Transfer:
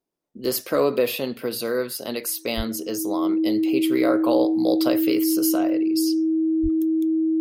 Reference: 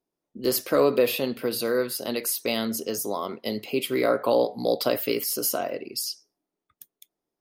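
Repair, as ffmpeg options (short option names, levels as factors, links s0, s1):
-filter_complex "[0:a]bandreject=f=320:w=30,asplit=3[s0][s1][s2];[s0]afade=t=out:st=2.56:d=0.02[s3];[s1]highpass=f=140:w=0.5412,highpass=f=140:w=1.3066,afade=t=in:st=2.56:d=0.02,afade=t=out:st=2.68:d=0.02[s4];[s2]afade=t=in:st=2.68:d=0.02[s5];[s3][s4][s5]amix=inputs=3:normalize=0,asplit=3[s6][s7][s8];[s6]afade=t=out:st=6.62:d=0.02[s9];[s7]highpass=f=140:w=0.5412,highpass=f=140:w=1.3066,afade=t=in:st=6.62:d=0.02,afade=t=out:st=6.74:d=0.02[s10];[s8]afade=t=in:st=6.74:d=0.02[s11];[s9][s10][s11]amix=inputs=3:normalize=0"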